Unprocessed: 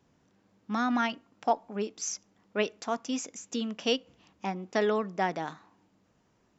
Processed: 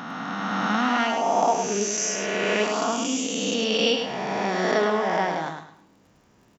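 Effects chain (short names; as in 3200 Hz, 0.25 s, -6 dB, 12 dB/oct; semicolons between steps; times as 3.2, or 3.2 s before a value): spectral swells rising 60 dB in 2.57 s; in parallel at -1.5 dB: compressor, threshold -36 dBFS, peak gain reduction 17 dB; on the sum: crackle 29/s -50 dBFS; feedback echo 0.104 s, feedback 29%, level -6 dB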